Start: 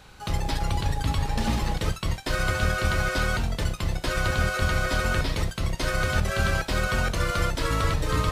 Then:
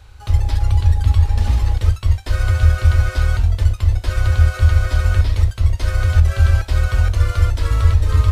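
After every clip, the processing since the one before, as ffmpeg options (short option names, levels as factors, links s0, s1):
-af "lowshelf=f=120:t=q:w=3:g=11,volume=0.794"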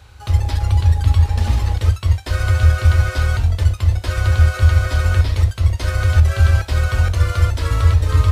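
-af "highpass=66,volume=1.33"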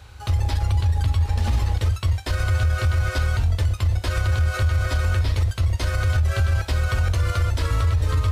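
-af "alimiter=limit=0.224:level=0:latency=1:release=76"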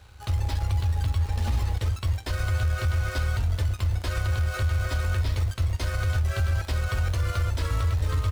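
-filter_complex "[0:a]asplit=2[s0][s1];[s1]adelay=400,lowpass=f=2000:p=1,volume=0.0944,asplit=2[s2][s3];[s3]adelay=400,lowpass=f=2000:p=1,volume=0.54,asplit=2[s4][s5];[s5]adelay=400,lowpass=f=2000:p=1,volume=0.54,asplit=2[s6][s7];[s7]adelay=400,lowpass=f=2000:p=1,volume=0.54[s8];[s0][s2][s4][s6][s8]amix=inputs=5:normalize=0,asplit=2[s9][s10];[s10]acrusher=bits=6:dc=4:mix=0:aa=0.000001,volume=0.562[s11];[s9][s11]amix=inputs=2:normalize=0,volume=0.376"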